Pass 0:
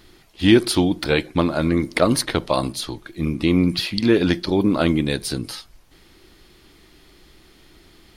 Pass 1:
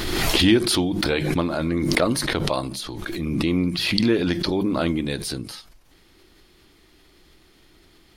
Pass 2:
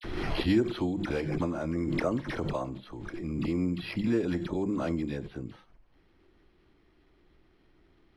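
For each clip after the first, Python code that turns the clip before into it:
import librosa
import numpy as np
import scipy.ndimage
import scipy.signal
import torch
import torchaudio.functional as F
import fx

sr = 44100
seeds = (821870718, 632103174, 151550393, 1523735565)

y1 = fx.hum_notches(x, sr, base_hz=50, count=4)
y1 = fx.pre_swell(y1, sr, db_per_s=27.0)
y1 = F.gain(torch.from_numpy(y1), -4.5).numpy()
y2 = fx.dispersion(y1, sr, late='lows', ms=45.0, hz=1800.0)
y2 = np.repeat(scipy.signal.resample_poly(y2, 1, 6), 6)[:len(y2)]
y2 = fx.spacing_loss(y2, sr, db_at_10k=21)
y2 = F.gain(torch.from_numpy(y2), -7.0).numpy()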